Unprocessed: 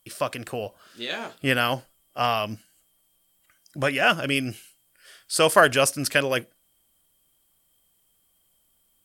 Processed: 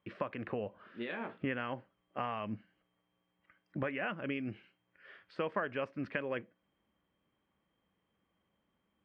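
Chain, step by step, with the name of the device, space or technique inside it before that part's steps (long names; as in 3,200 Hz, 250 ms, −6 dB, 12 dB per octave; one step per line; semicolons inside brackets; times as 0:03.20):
bass amplifier (downward compressor 4 to 1, threshold −33 dBFS, peak gain reduction 18.5 dB; loudspeaker in its box 85–2,200 Hz, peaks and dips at 140 Hz −5 dB, 200 Hz +5 dB, 690 Hz −6 dB, 1,400 Hz −4 dB)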